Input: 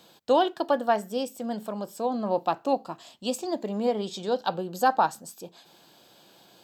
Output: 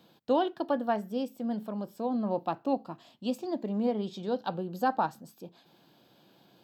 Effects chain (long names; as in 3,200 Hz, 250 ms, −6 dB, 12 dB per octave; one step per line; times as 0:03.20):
graphic EQ with 10 bands 125 Hz +7 dB, 250 Hz +6 dB, 8,000 Hz −11 dB
level −6.5 dB